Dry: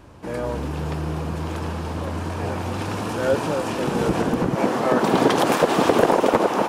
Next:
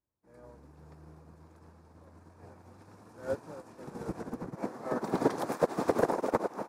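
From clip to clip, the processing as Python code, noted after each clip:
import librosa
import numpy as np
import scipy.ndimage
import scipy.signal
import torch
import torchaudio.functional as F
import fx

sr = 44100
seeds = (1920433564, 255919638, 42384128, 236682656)

y = fx.peak_eq(x, sr, hz=3000.0, db=-13.5, octaves=0.56)
y = fx.upward_expand(y, sr, threshold_db=-39.0, expansion=2.5)
y = F.gain(torch.from_numpy(y), -7.5).numpy()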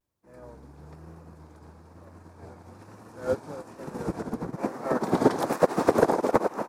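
y = fx.vibrato(x, sr, rate_hz=1.1, depth_cents=78.0)
y = F.gain(torch.from_numpy(y), 6.5).numpy()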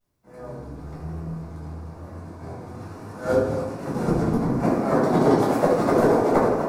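y = fx.rider(x, sr, range_db=3, speed_s=0.5)
y = y + 10.0 ** (-12.5 / 20.0) * np.pad(y, (int(166 * sr / 1000.0), 0))[:len(y)]
y = fx.room_shoebox(y, sr, seeds[0], volume_m3=940.0, walls='furnished', distance_m=7.1)
y = F.gain(torch.from_numpy(y), -3.5).numpy()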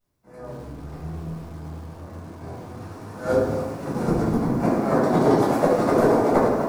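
y = fx.echo_crushed(x, sr, ms=108, feedback_pct=35, bits=7, wet_db=-11.5)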